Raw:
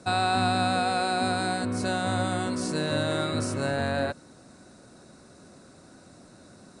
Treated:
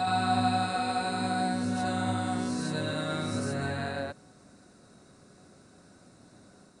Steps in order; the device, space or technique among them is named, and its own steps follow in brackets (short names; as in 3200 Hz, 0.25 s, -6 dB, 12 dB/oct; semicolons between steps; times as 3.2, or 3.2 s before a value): reverse reverb (reverse; reverb RT60 0.95 s, pre-delay 85 ms, DRR 0 dB; reverse); gain -7.5 dB